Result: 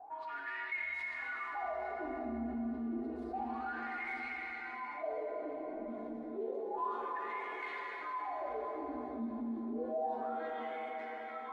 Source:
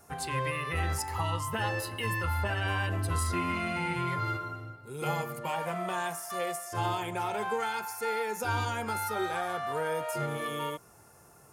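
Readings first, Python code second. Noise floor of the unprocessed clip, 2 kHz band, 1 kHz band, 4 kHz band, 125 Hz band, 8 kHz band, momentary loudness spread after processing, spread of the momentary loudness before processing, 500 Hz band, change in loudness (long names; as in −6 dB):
−57 dBFS, −6.0 dB, −7.0 dB, −19.0 dB, below −25 dB, below −35 dB, 5 LU, 4 LU, −5.5 dB, −7.5 dB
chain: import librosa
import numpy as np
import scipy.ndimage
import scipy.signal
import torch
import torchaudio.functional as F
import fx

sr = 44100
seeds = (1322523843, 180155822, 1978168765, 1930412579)

y = fx.tracing_dist(x, sr, depth_ms=0.2)
y = fx.env_lowpass(y, sr, base_hz=1700.0, full_db=-26.0)
y = fx.dereverb_blind(y, sr, rt60_s=1.8)
y = fx.graphic_eq_31(y, sr, hz=(630, 1250, 4000, 10000), db=(8, -8, 9, 4))
y = y * np.sin(2.0 * np.pi * 150.0 * np.arange(len(y)) / sr)
y = fx.low_shelf(y, sr, hz=93.0, db=9.0)
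y = y + 0.66 * np.pad(y, (int(2.8 * sr / 1000.0), 0))[:len(y)]
y = y + 10.0 ** (-6.0 / 20.0) * np.pad(y, (int(891 * sr / 1000.0), 0))[:len(y)]
y = fx.wah_lfo(y, sr, hz=0.3, low_hz=230.0, high_hz=2200.0, q=22.0)
y = fx.rev_plate(y, sr, seeds[0], rt60_s=4.4, hf_ratio=0.65, predelay_ms=0, drr_db=-2.0)
y = fx.env_flatten(y, sr, amount_pct=50)
y = F.gain(torch.from_numpy(y), 2.0).numpy()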